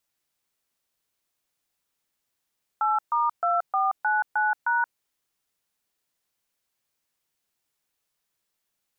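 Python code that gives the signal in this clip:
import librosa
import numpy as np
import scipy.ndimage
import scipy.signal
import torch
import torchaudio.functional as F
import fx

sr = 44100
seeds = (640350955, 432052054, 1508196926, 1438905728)

y = fx.dtmf(sr, digits='8*2499#', tone_ms=177, gap_ms=132, level_db=-23.0)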